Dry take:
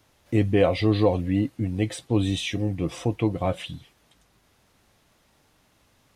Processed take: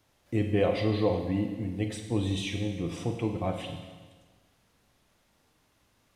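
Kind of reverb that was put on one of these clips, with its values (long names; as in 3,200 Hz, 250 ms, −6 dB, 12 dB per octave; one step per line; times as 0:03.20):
four-comb reverb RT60 1.4 s, combs from 32 ms, DRR 4.5 dB
level −6.5 dB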